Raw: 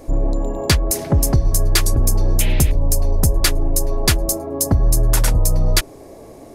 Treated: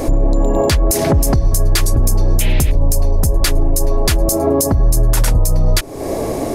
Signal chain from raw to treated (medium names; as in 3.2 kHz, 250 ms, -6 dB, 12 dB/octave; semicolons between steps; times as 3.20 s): compression 6:1, threshold -28 dBFS, peak gain reduction 17 dB; loudness maximiser +24 dB; trim -4.5 dB